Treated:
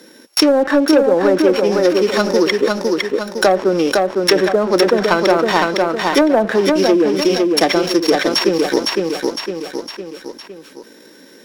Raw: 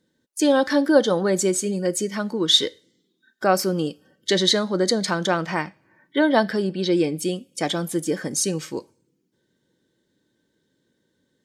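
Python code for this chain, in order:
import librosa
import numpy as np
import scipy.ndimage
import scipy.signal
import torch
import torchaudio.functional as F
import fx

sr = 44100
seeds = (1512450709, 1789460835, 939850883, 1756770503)

y = np.r_[np.sort(x[:len(x) // 8 * 8].reshape(-1, 8), axis=1).ravel(), x[len(x) // 8 * 8:]]
y = scipy.signal.sosfilt(scipy.signal.bessel(8, 350.0, 'highpass', norm='mag', fs=sr, output='sos'), y)
y = fx.env_lowpass_down(y, sr, base_hz=680.0, full_db=-16.0)
y = fx.leveller(y, sr, passes=1)
y = fx.transient(y, sr, attack_db=8, sustain_db=-1)
y = fx.leveller(y, sr, passes=1)
y = fx.echo_feedback(y, sr, ms=508, feedback_pct=28, wet_db=-5.5)
y = fx.env_flatten(y, sr, amount_pct=50)
y = y * 10.0 ** (-2.0 / 20.0)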